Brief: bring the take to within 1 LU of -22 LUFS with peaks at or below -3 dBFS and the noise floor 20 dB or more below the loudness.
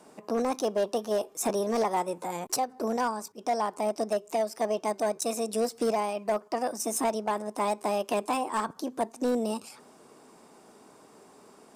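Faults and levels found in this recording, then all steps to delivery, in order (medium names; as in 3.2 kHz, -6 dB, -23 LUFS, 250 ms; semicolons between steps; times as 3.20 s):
clipped samples 1.2%; clipping level -21.0 dBFS; loudness -30.0 LUFS; peak level -21.0 dBFS; loudness target -22.0 LUFS
-> clip repair -21 dBFS; trim +8 dB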